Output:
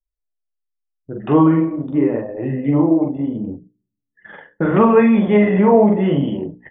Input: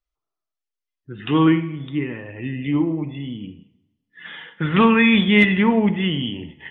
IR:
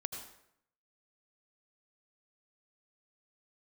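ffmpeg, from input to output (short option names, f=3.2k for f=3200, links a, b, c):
-filter_complex "[0:a]lowshelf=f=160:g=-2.5,asplit=2[a][b];[b]aecho=0:1:43|75:0.668|0.133[c];[a][c]amix=inputs=2:normalize=0,anlmdn=10,bandreject=f=60:t=h:w=6,bandreject=f=120:t=h:w=6,bandreject=f=180:t=h:w=6,bandreject=f=240:t=h:w=6,bandreject=f=300:t=h:w=6,bandreject=f=360:t=h:w=6,bandreject=f=420:t=h:w=6,bandreject=f=480:t=h:w=6,flanger=delay=5.1:depth=6.4:regen=-44:speed=0.78:shape=triangular,lowpass=1.1k,asplit=2[d][e];[e]alimiter=limit=-19.5dB:level=0:latency=1:release=283,volume=1dB[f];[d][f]amix=inputs=2:normalize=0,acompressor=threshold=-15dB:ratio=4,equalizer=f=590:w=1.1:g=14,volume=2dB"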